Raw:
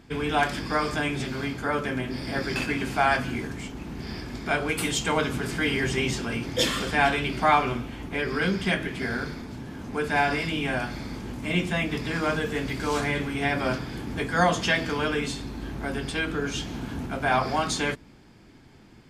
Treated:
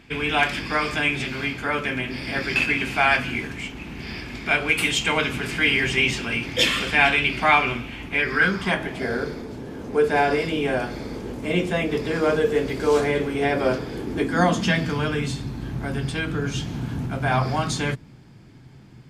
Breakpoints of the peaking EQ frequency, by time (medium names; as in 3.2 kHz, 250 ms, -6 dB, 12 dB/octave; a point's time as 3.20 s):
peaking EQ +11.5 dB 0.88 oct
8.15 s 2.5 kHz
9.17 s 460 Hz
13.96 s 460 Hz
15.01 s 130 Hz